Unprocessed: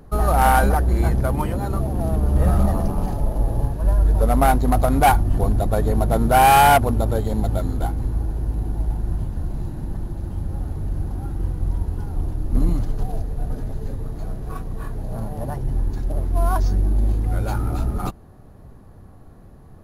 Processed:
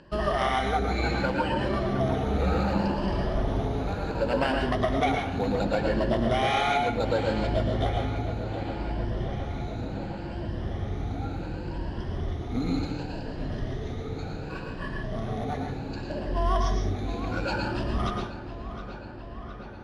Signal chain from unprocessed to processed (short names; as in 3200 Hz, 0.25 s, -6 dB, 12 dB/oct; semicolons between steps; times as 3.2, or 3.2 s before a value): moving spectral ripple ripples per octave 1.3, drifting +0.68 Hz, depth 14 dB; weighting filter D; compressor 12:1, threshold -19 dBFS, peak gain reduction 15 dB; air absorption 130 m; darkening echo 0.714 s, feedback 76%, low-pass 4400 Hz, level -12 dB; on a send at -2 dB: reverb RT60 0.45 s, pre-delay 0.104 s; on the sum: gain -3.5 dB